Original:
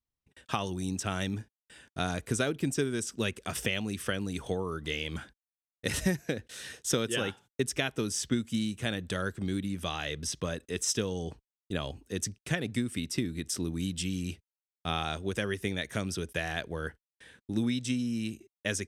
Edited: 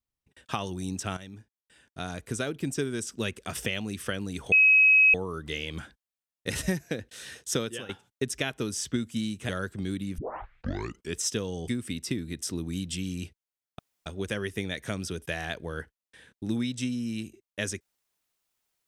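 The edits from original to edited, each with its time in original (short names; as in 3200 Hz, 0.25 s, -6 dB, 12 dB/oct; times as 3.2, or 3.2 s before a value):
1.17–2.88 fade in, from -13.5 dB
4.52 add tone 2550 Hz -15 dBFS 0.62 s
6.96–7.27 fade out linear, to -16 dB
8.87–9.12 cut
9.81 tape start 1.00 s
11.31–12.75 cut
14.86–15.13 room tone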